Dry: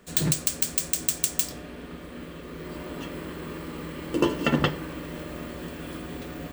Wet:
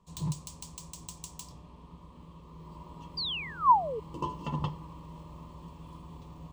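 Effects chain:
sound drawn into the spectrogram fall, 0:03.17–0:04.00, 410–4,900 Hz −17 dBFS
drawn EQ curve 160 Hz 0 dB, 260 Hz −13 dB, 710 Hz −12 dB, 1,000 Hz +7 dB, 1,500 Hz −26 dB, 2,900 Hz −12 dB, 6,500 Hz −10 dB, 15,000 Hz −23 dB
level −5 dB

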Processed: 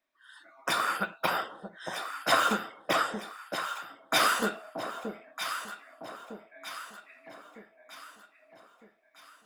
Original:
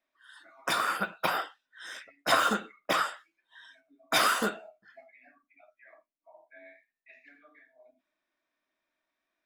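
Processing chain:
delay that swaps between a low-pass and a high-pass 628 ms, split 850 Hz, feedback 67%, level −6 dB

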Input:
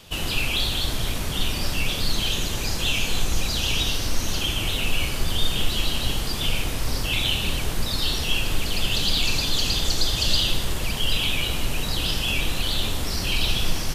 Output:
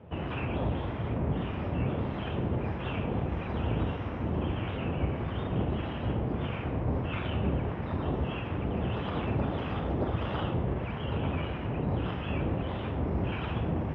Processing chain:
lower of the sound and its delayed copy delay 0.33 ms
high-pass filter 70 Hz 24 dB per octave
two-band tremolo in antiphase 1.6 Hz, depth 50%, crossover 940 Hz
low-pass filter 1,600 Hz 24 dB per octave
level +3.5 dB

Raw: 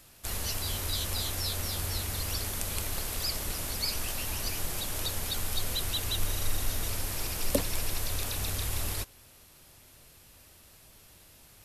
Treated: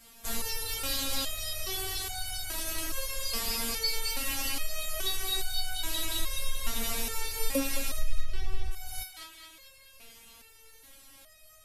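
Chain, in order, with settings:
0:07.98–0:08.71: RIAA equalisation playback
downward compressor 4 to 1, threshold −26 dBFS, peak gain reduction 14 dB
feedback echo with a band-pass in the loop 216 ms, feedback 70%, band-pass 2,400 Hz, level −3.5 dB
boost into a limiter +14 dB
step-sequenced resonator 2.4 Hz 230–750 Hz
level +1.5 dB

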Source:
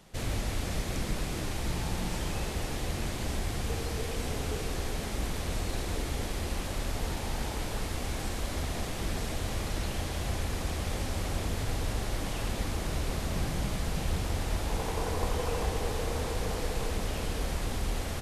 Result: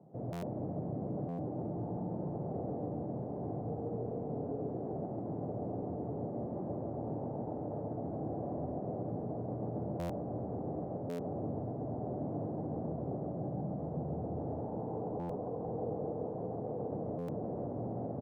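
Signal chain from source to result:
elliptic band-pass filter 120–720 Hz, stop band 60 dB
brickwall limiter −33.5 dBFS, peak gain reduction 8.5 dB
repeating echo 135 ms, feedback 37%, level −4 dB
convolution reverb RT60 0.35 s, pre-delay 7 ms, DRR 9 dB
buffer that repeats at 0:00.32/0:01.28/0:09.99/0:11.09/0:15.19/0:17.18, samples 512, times 8
level +1 dB

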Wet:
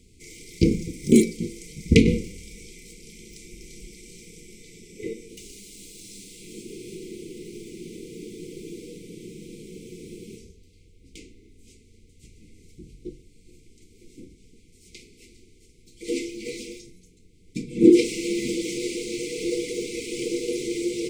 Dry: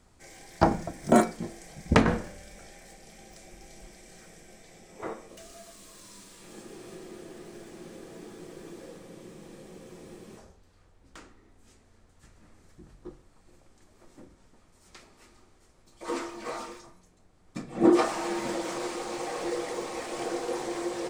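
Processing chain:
linear-phase brick-wall band-stop 500–2,000 Hz
level +6.5 dB

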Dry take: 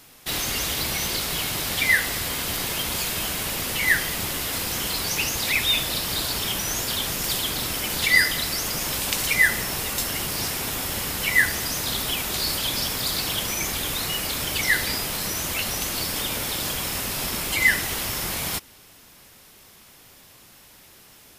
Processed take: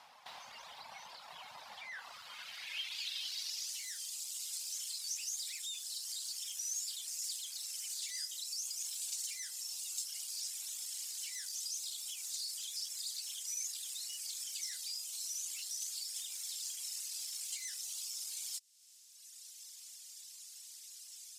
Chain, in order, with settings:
reverb reduction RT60 1.7 s
tube saturation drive 25 dB, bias 0.55
drawn EQ curve 230 Hz 0 dB, 340 Hz −12 dB, 560 Hz 0 dB, 1,200 Hz −10 dB, 4,700 Hz +4 dB, 8,300 Hz −1 dB
downward compressor 2.5 to 1, threshold −51 dBFS, peak gain reduction 17 dB
low shelf with overshoot 670 Hz −7.5 dB, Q 1.5
band-pass filter sweep 940 Hz → 7,600 Hz, 0:01.91–0:03.83
level +12.5 dB

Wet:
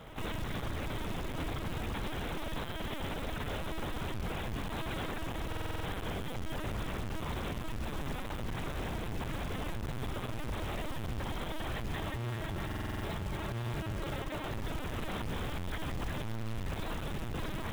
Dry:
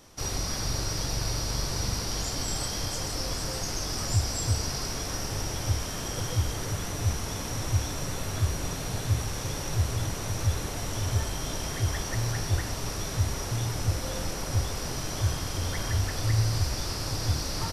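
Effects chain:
each half-wave held at its own peak
mains-hum notches 50/100/150/200/250/300/350/400/450 Hz
compressor whose output falls as the input rises −26 dBFS, ratio −1
soft clipping −28 dBFS, distortion −12 dB
linear-prediction vocoder at 8 kHz pitch kept
0:11.97–0:14.52: notch comb filter 250 Hz
tape delay 102 ms, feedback 78%, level −21 dB, low-pass 1,900 Hz
brickwall limiter −28 dBFS, peak gain reduction 10 dB
floating-point word with a short mantissa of 2 bits
buffer that repeats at 0:05.48/0:12.67, samples 2,048, times 7

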